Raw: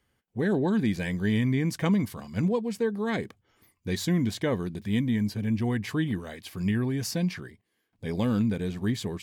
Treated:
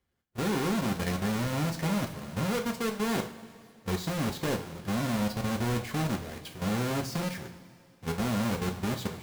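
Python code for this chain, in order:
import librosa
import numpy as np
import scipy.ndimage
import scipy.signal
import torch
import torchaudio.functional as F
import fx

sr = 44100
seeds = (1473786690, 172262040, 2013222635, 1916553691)

y = fx.halfwave_hold(x, sr)
y = fx.level_steps(y, sr, step_db=13)
y = fx.rev_double_slope(y, sr, seeds[0], early_s=0.3, late_s=2.4, knee_db=-18, drr_db=2.5)
y = y * 10.0 ** (-3.5 / 20.0)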